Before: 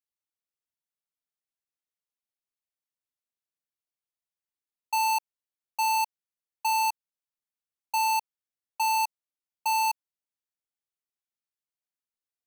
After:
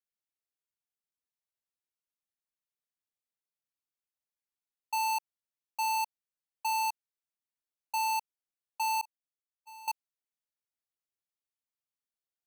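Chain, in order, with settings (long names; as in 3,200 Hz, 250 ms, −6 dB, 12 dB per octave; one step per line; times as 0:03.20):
0:09.01–0:09.88: noise gate −24 dBFS, range −43 dB
level −5 dB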